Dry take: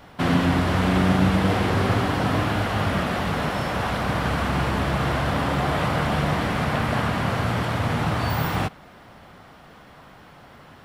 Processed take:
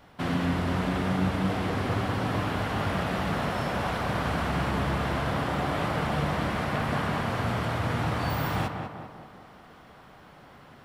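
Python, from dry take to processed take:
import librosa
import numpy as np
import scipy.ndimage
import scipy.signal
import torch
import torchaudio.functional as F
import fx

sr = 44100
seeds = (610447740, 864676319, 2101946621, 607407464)

y = fx.rider(x, sr, range_db=10, speed_s=2.0)
y = fx.echo_tape(y, sr, ms=194, feedback_pct=60, wet_db=-4, lp_hz=1800.0, drive_db=8.0, wow_cents=9)
y = F.gain(torch.from_numpy(y), -6.5).numpy()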